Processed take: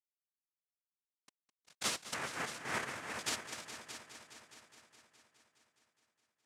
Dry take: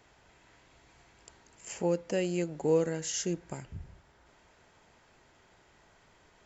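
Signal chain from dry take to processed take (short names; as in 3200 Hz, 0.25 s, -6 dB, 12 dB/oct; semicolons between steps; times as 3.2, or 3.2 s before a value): FFT order left unsorted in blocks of 64 samples; LFO band-pass sine 2.7 Hz 650–3900 Hz; sample gate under -56.5 dBFS; fixed phaser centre 730 Hz, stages 8; noise vocoder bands 1; 2.14–3.19 resonant high shelf 2700 Hz -12 dB, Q 1.5; multi-head echo 0.208 s, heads all three, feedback 51%, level -14.5 dB; gain +13 dB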